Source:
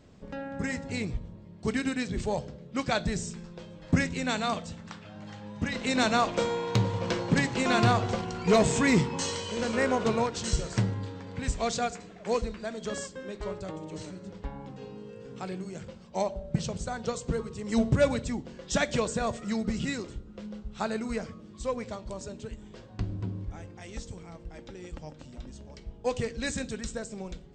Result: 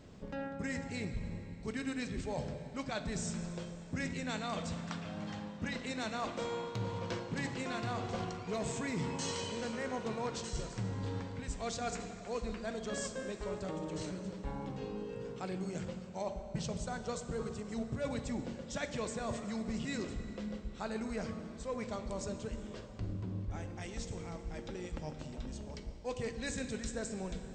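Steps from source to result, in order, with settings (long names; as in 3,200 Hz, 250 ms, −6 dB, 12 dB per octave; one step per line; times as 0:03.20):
reversed playback
downward compressor 6 to 1, threshold −37 dBFS, peak gain reduction 18 dB
reversed playback
convolution reverb RT60 4.1 s, pre-delay 31 ms, DRR 8.5 dB
level +1 dB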